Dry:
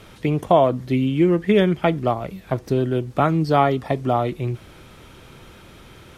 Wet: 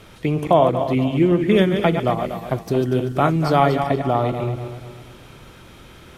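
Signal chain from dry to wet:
feedback delay that plays each chunk backwards 120 ms, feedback 61%, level −7 dB
0:01.51–0:03.87: high-shelf EQ 5,200 Hz +6 dB

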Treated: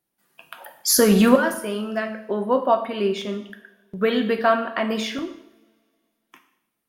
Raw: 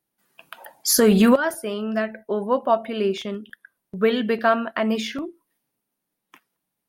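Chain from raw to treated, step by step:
coupled-rooms reverb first 0.68 s, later 2.4 s, from −26 dB, DRR 5.5 dB

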